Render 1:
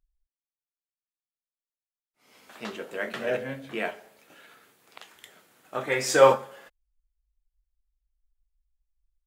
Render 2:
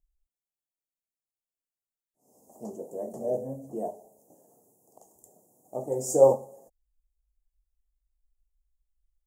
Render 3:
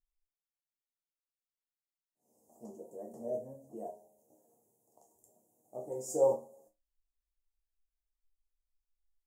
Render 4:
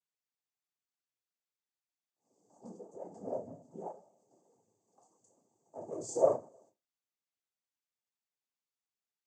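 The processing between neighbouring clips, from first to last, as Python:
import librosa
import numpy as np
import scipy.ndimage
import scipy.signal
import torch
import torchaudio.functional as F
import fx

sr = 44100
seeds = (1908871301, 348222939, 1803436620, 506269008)

y1 = scipy.signal.sosfilt(scipy.signal.ellip(3, 1.0, 40, [750.0, 6900.0], 'bandstop', fs=sr, output='sos'), x)
y2 = fx.resonator_bank(y1, sr, root=39, chord='sus4', decay_s=0.22)
y3 = fx.noise_vocoder(y2, sr, seeds[0], bands=16)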